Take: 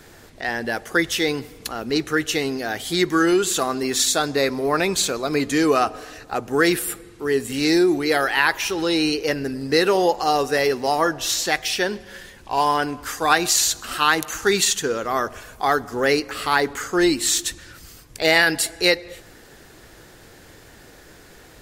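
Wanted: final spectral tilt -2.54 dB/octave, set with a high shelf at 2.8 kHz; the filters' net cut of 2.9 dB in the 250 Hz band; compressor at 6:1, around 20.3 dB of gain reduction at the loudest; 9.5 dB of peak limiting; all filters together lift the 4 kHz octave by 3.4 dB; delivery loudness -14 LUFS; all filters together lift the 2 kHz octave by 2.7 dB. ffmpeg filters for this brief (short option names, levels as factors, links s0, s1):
-af "equalizer=f=250:t=o:g=-4.5,equalizer=f=2000:t=o:g=4,highshelf=f=2800:g=-6.5,equalizer=f=4000:t=o:g=8,acompressor=threshold=0.0224:ratio=6,volume=14.1,alimiter=limit=0.794:level=0:latency=1"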